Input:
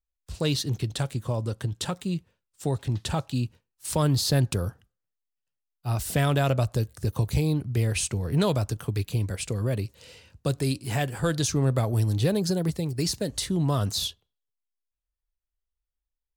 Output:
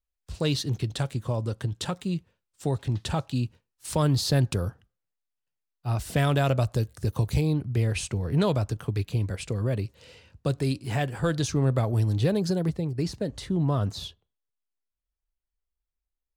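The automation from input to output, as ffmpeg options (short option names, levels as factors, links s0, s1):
-af "asetnsamples=n=441:p=0,asendcmd='4.68 lowpass f 4000;6.16 lowpass f 8700;7.41 lowpass f 3700;12.69 lowpass f 1500',lowpass=f=6500:p=1"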